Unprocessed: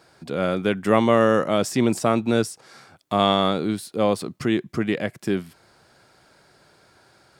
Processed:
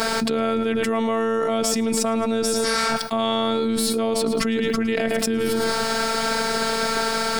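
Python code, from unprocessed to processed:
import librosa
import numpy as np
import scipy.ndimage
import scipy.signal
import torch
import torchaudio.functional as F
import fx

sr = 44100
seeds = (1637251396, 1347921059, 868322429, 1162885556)

y = fx.robotise(x, sr, hz=225.0)
y = fx.echo_feedback(y, sr, ms=109, feedback_pct=33, wet_db=-13.5)
y = fx.env_flatten(y, sr, amount_pct=100)
y = y * 10.0 ** (-4.5 / 20.0)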